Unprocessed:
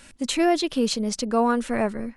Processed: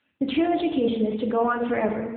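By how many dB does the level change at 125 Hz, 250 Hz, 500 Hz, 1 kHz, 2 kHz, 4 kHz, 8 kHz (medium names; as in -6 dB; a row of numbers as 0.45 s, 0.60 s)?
no reading, 0.0 dB, +0.5 dB, -1.5 dB, -1.0 dB, -8.0 dB, under -40 dB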